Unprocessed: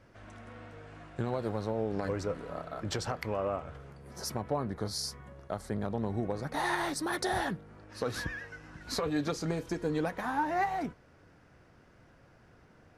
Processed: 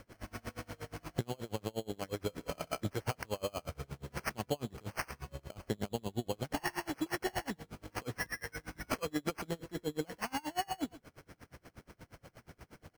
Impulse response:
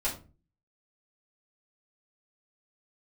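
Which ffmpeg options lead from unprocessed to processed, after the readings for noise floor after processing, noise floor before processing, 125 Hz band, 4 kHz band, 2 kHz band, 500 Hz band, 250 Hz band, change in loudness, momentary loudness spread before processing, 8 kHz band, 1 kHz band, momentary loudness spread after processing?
−73 dBFS, −60 dBFS, −4.0 dB, −3.5 dB, −4.0 dB, −5.5 dB, −4.5 dB, −5.5 dB, 17 LU, −4.0 dB, −6.5 dB, 19 LU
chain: -af "acompressor=threshold=-39dB:ratio=6,acrusher=samples=12:mix=1:aa=0.000001,aecho=1:1:131:0.15,aeval=exprs='val(0)*pow(10,-31*(0.5-0.5*cos(2*PI*8.4*n/s))/20)':channel_layout=same,volume=10dB"

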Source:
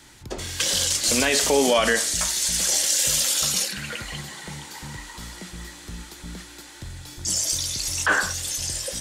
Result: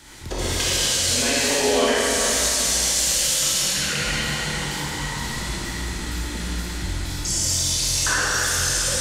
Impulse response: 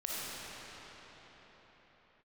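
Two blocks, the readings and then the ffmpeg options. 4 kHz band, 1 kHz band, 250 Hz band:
+3.0 dB, +2.0 dB, +2.5 dB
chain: -filter_complex "[0:a]acompressor=threshold=-27dB:ratio=6[link_01];[1:a]atrim=start_sample=2205,asetrate=70560,aresample=44100[link_02];[link_01][link_02]afir=irnorm=-1:irlink=0,volume=9dB"

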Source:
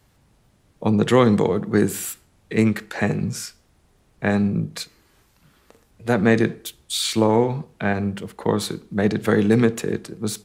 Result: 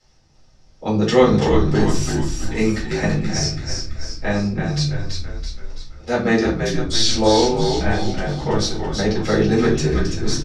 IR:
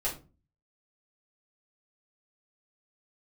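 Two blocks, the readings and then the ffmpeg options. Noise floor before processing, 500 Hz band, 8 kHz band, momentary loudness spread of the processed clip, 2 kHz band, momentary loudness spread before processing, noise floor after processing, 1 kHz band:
−61 dBFS, +2.5 dB, +4.0 dB, 13 LU, +1.5 dB, 13 LU, −51 dBFS, +3.0 dB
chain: -filter_complex "[0:a]lowpass=frequency=5500:width_type=q:width=6.4,asplit=8[link_01][link_02][link_03][link_04][link_05][link_06][link_07][link_08];[link_02]adelay=332,afreqshift=-56,volume=-5dB[link_09];[link_03]adelay=664,afreqshift=-112,volume=-10.7dB[link_10];[link_04]adelay=996,afreqshift=-168,volume=-16.4dB[link_11];[link_05]adelay=1328,afreqshift=-224,volume=-22dB[link_12];[link_06]adelay=1660,afreqshift=-280,volume=-27.7dB[link_13];[link_07]adelay=1992,afreqshift=-336,volume=-33.4dB[link_14];[link_08]adelay=2324,afreqshift=-392,volume=-39.1dB[link_15];[link_01][link_09][link_10][link_11][link_12][link_13][link_14][link_15]amix=inputs=8:normalize=0[link_16];[1:a]atrim=start_sample=2205[link_17];[link_16][link_17]afir=irnorm=-1:irlink=0,volume=-5.5dB"

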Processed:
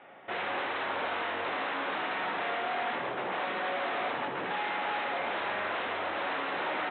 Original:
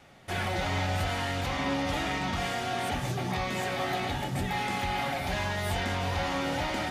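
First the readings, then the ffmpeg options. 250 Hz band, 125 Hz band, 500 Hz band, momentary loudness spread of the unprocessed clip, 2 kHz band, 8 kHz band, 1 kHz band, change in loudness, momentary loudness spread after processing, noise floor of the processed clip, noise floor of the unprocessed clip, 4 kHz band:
−9.0 dB, −22.0 dB, −1.0 dB, 2 LU, +0.5 dB, below −40 dB, 0.0 dB, −2.0 dB, 2 LU, −36 dBFS, −35 dBFS, −4.5 dB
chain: -af "aresample=8000,aeval=exprs='0.0266*(abs(mod(val(0)/0.0266+3,4)-2)-1)':channel_layout=same,aresample=44100,highpass=390,lowpass=2100,aecho=1:1:77:0.398,volume=5.5dB"

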